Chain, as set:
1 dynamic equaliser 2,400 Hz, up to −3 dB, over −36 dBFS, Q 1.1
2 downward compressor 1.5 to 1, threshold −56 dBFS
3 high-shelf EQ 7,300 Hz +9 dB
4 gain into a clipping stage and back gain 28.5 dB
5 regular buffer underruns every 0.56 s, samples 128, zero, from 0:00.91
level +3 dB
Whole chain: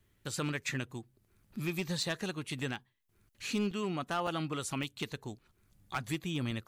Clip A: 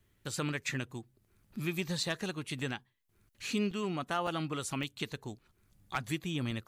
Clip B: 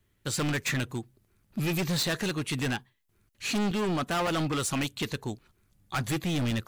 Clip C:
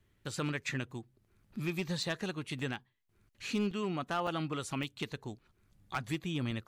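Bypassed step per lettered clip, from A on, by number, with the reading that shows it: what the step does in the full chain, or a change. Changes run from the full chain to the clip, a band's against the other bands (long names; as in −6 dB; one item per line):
4, distortion level −21 dB
2, average gain reduction 10.5 dB
3, 8 kHz band −4.5 dB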